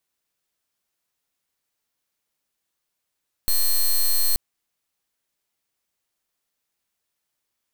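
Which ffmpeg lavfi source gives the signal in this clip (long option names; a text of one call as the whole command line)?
ffmpeg -f lavfi -i "aevalsrc='0.119*(2*lt(mod(4230*t,1),0.09)-1)':duration=0.88:sample_rate=44100" out.wav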